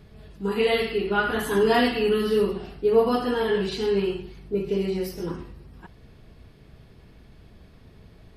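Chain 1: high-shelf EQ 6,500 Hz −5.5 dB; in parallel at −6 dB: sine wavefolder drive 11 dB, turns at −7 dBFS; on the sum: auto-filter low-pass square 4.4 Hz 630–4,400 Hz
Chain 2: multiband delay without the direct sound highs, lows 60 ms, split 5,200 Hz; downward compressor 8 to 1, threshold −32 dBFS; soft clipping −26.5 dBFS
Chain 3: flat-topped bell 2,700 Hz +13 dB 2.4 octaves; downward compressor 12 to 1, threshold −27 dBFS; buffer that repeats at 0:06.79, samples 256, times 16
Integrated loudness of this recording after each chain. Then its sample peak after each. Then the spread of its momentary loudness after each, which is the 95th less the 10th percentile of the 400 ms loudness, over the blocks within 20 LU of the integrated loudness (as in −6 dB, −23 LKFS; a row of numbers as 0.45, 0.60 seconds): −13.5, −37.0, −30.5 LKFS; −1.5, −27.5, −17.0 dBFS; 10, 16, 19 LU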